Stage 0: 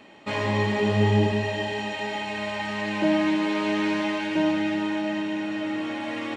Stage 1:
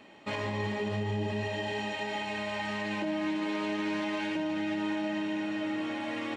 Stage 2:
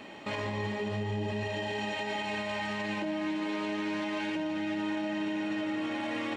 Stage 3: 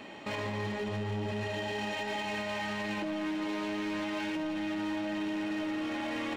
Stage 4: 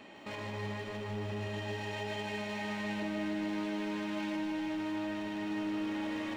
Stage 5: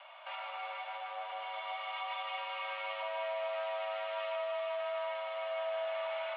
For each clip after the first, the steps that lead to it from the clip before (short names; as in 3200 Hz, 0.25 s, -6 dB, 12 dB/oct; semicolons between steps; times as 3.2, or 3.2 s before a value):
limiter -20.5 dBFS, peak gain reduction 10.5 dB; gain -4 dB
limiter -33.5 dBFS, peak gain reduction 9 dB; gain +7.5 dB
hard clip -30.5 dBFS, distortion -16 dB
lo-fi delay 0.154 s, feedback 80%, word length 11-bit, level -6 dB; gain -6 dB
mistuned SSB +340 Hz 260–3100 Hz